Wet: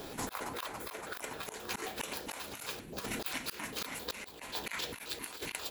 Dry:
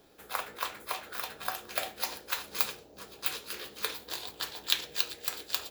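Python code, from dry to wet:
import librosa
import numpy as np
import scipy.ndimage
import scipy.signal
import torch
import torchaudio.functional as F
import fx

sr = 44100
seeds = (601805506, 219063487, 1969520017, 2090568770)

y = fx.pitch_trill(x, sr, semitones=-9.5, every_ms=133)
y = fx.peak_eq(y, sr, hz=1000.0, db=3.0, octaves=0.21)
y = fx.auto_swell(y, sr, attack_ms=631.0)
y = fx.over_compress(y, sr, threshold_db=-52.0, ratio=-0.5)
y = y * librosa.db_to_amplitude(14.5)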